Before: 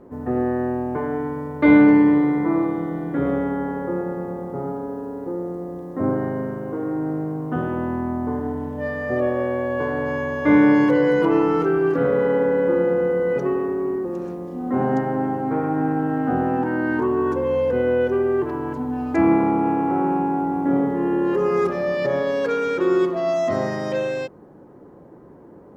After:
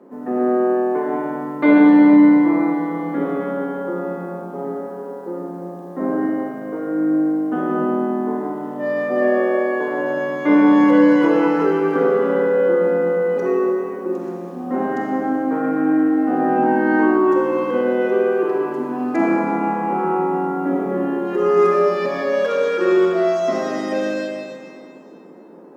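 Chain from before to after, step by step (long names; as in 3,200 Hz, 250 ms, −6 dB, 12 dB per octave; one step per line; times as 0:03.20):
Butterworth high-pass 180 Hz 48 dB per octave
convolution reverb RT60 2.2 s, pre-delay 5 ms, DRR −1 dB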